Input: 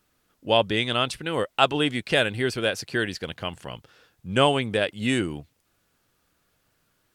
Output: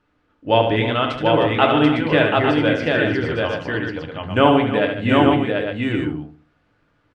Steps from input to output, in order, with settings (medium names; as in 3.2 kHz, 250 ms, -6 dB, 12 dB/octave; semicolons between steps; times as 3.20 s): low-pass 2.4 kHz 12 dB/octave; multi-tap echo 73/148/308/736/855 ms -7/-13/-14/-3/-6.5 dB; FDN reverb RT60 0.38 s, low-frequency decay 1.3×, high-frequency decay 0.5×, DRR 5 dB; trim +3.5 dB